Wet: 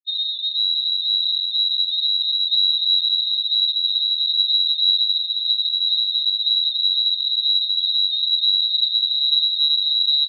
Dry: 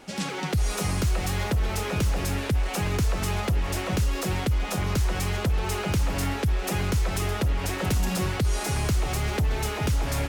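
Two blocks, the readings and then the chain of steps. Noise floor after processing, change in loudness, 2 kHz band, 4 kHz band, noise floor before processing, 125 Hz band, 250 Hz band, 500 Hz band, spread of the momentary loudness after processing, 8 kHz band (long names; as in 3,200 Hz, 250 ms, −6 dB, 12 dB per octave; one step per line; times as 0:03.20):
−26 dBFS, +10.5 dB, below −40 dB, +23.0 dB, −32 dBFS, below −40 dB, below −40 dB, below −40 dB, 3 LU, below −40 dB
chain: running median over 41 samples
low-shelf EQ 73 Hz +12 dB
single-tap delay 192 ms −15.5 dB
comparator with hysteresis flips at −37 dBFS
feedback delay with all-pass diffusion 974 ms, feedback 63%, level −4.5 dB
spectral peaks only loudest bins 2
voice inversion scrambler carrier 3,900 Hz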